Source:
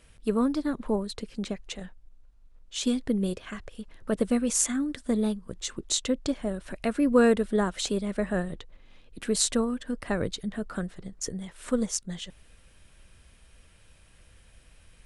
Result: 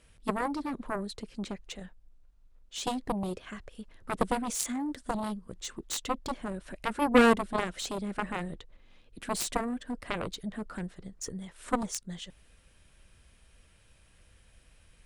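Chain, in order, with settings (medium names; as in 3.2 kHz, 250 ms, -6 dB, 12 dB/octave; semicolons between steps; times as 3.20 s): dynamic bell 310 Hz, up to +4 dB, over -35 dBFS, Q 0.98; Chebyshev shaper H 7 -11 dB, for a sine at -6 dBFS; trim -3.5 dB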